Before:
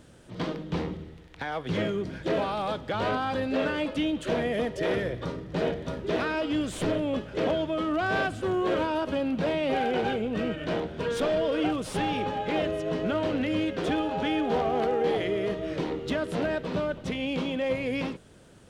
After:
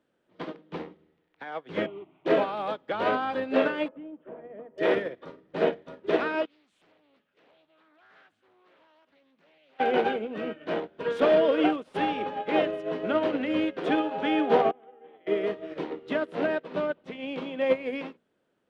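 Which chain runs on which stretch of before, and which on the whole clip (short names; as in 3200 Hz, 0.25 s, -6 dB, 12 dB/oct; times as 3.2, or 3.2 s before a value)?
1.86–2.26 delta modulation 16 kbps, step -35 dBFS + fixed phaser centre 330 Hz, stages 8
3.88–4.78 LPF 1100 Hz + compressor 2.5:1, threshold -33 dBFS + careless resampling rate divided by 6×, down none, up filtered
6.45–9.8 passive tone stack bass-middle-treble 5-5-5 + Doppler distortion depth 0.79 ms
14.71–15.27 resonator 260 Hz, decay 1.2 s, mix 80% + careless resampling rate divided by 6×, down none, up filtered
whole clip: three-band isolator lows -19 dB, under 200 Hz, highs -14 dB, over 3500 Hz; notches 60/120/180/240 Hz; upward expander 2.5:1, over -41 dBFS; gain +8 dB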